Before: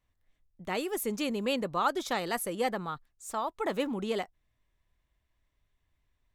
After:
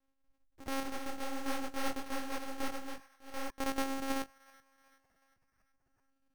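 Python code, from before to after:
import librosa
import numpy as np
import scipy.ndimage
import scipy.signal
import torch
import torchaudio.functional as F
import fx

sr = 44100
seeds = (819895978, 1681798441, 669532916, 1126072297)

y = np.r_[np.sort(x[:len(x) // 128 * 128].reshape(-1, 128), axis=1).ravel(), x[len(x) // 128 * 128:]]
y = fx.echo_wet_bandpass(y, sr, ms=375, feedback_pct=49, hz=1400.0, wet_db=-22.0)
y = fx.lpc_monotone(y, sr, seeds[0], pitch_hz=270.0, order=16)
y = np.repeat(y[::6], 6)[:len(y)]
y = fx.detune_double(y, sr, cents=48, at=(0.83, 3.5))
y = y * librosa.db_to_amplitude(-2.5)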